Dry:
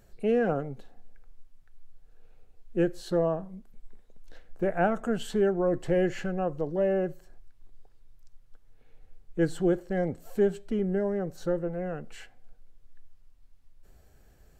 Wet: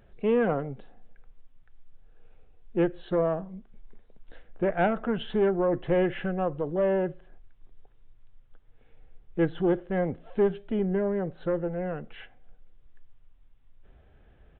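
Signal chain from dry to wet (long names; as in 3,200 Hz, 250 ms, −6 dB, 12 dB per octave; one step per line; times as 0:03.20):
tube saturation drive 17 dB, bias 0.35
downsampling to 8,000 Hz
level +3 dB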